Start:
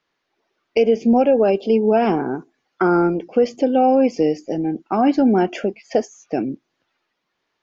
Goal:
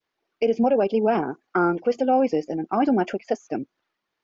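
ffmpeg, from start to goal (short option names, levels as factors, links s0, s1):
-af "adynamicequalizer=threshold=0.02:dfrequency=1200:dqfactor=1.1:tfrequency=1200:tqfactor=1.1:attack=5:release=100:ratio=0.375:range=3:mode=boostabove:tftype=bell,atempo=1.8,volume=0.531"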